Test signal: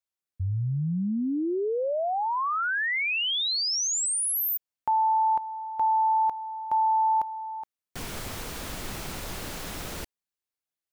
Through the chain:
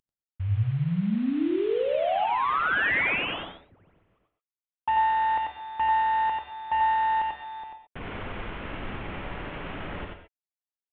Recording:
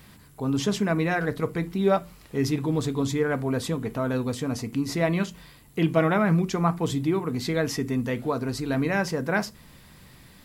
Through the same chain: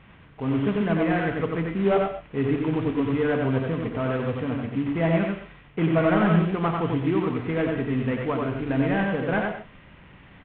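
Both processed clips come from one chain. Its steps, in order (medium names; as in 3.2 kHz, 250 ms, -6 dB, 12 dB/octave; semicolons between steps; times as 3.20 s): CVSD coder 16 kbps; on a send: delay 91 ms -3.5 dB; on the sum: gated-style reverb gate 150 ms rising, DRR 7.5 dB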